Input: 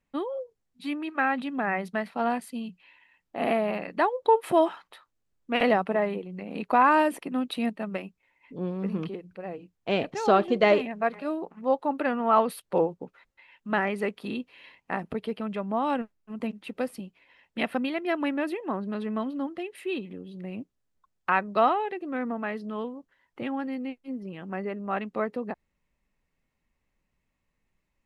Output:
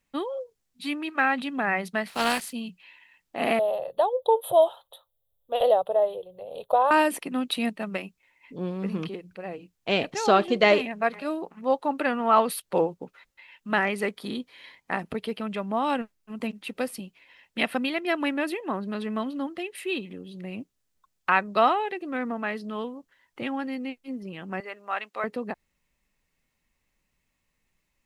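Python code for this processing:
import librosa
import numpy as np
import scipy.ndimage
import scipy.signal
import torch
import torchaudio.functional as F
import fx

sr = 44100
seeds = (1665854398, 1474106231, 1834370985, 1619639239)

y = fx.spec_flatten(x, sr, power=0.59, at=(2.07, 2.51), fade=0.02)
y = fx.curve_eq(y, sr, hz=(130.0, 200.0, 300.0, 540.0, 1000.0, 2300.0, 3500.0, 5100.0, 8600.0, 13000.0), db=(0, -24, -19, 8, -6, -28, 2, -26, -8, 6), at=(3.59, 6.91))
y = fx.notch(y, sr, hz=2700.0, q=5.1, at=(14.06, 14.93))
y = fx.highpass(y, sr, hz=710.0, slope=12, at=(24.6, 25.24))
y = fx.high_shelf(y, sr, hz=2200.0, db=9.5)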